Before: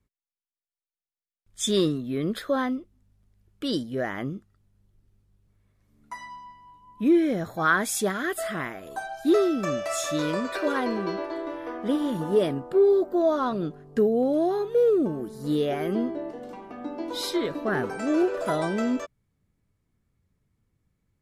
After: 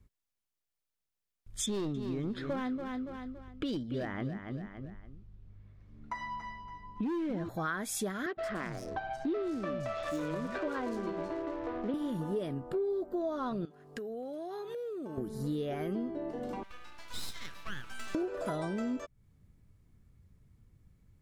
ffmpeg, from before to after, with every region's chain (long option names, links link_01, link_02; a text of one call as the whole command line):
ffmpeg -i in.wav -filter_complex "[0:a]asettb=1/sr,asplit=3[link_01][link_02][link_03];[link_01]atrim=end=1.664[link_04];[link_02]atrim=start=1.66:end=7.49,asetpts=PTS-STARTPTS,afade=type=in:duration=0.004:curve=qsin,afade=type=out:start_time=5.826:duration=0.004:curve=qsin,lowpass=3900,asoftclip=type=hard:threshold=-21.5dB,aecho=1:1:283|566|849:0.335|0.0971|0.0282,atrim=end_sample=257103[link_05];[link_03]atrim=start=7.486[link_06];[link_04][link_05]acrossfade=duration=0.004:curve1=hsin:curve2=qsin[link_07];[link_07][link_06]acrossfade=duration=0.004:curve1=qsin:curve2=hsin,asettb=1/sr,asplit=3[link_08][link_09][link_10];[link_08]atrim=end=8.264[link_11];[link_09]atrim=start=8.26:end=11.94,asetpts=PTS-STARTPTS,afade=type=in:duration=0.004:curve=qsin,afade=type=out:start_time=3.676:duration=0.004:curve=qsin,adynamicsmooth=sensitivity=5:basefreq=630,acrossover=split=180|4400[link_12][link_13][link_14];[link_12]adelay=110[link_15];[link_14]adelay=170[link_16];[link_15][link_13][link_16]amix=inputs=3:normalize=0,atrim=end_sample=162288[link_17];[link_10]atrim=start=11.936[link_18];[link_11][link_17]acrossfade=duration=0.004:curve1=hsin:curve2=qsin[link_19];[link_19][link_18]acrossfade=duration=0.004:curve1=qsin:curve2=hsin,asettb=1/sr,asplit=3[link_20][link_21][link_22];[link_20]atrim=end=13.654[link_23];[link_21]atrim=start=13.65:end=15.18,asetpts=PTS-STARTPTS,afade=type=in:duration=0.004:curve=qsin,afade=type=out:start_time=1.526:duration=0.004:curve=qsin,highpass=frequency=850:poles=1,acompressor=threshold=-41dB:ratio=10:attack=3.2:release=140:knee=1:detection=peak[link_24];[link_22]atrim=start=15.176[link_25];[link_23][link_24]acrossfade=duration=0.004:curve1=hsin:curve2=qsin[link_26];[link_26][link_25]acrossfade=duration=0.004:curve1=qsin:curve2=hsin,asettb=1/sr,asplit=3[link_27][link_28][link_29];[link_27]atrim=end=16.634[link_30];[link_28]atrim=start=16.63:end=18.15,asetpts=PTS-STARTPTS,afade=type=in:duration=0.004:curve=qsin,afade=type=out:start_time=1.516:duration=0.004:curve=qsin,highpass=frequency=1300:width=0.5412,highpass=frequency=1300:width=1.3066,aeval=exprs='max(val(0),0)':channel_layout=same[link_31];[link_29]atrim=start=18.146[link_32];[link_30][link_31]acrossfade=duration=0.004:curve1=hsin:curve2=qsin[link_33];[link_33][link_32]acrossfade=duration=0.004:curve1=qsin:curve2=hsin,lowshelf=frequency=160:gain=10.5,acompressor=threshold=-38dB:ratio=4,volume=3dB" out.wav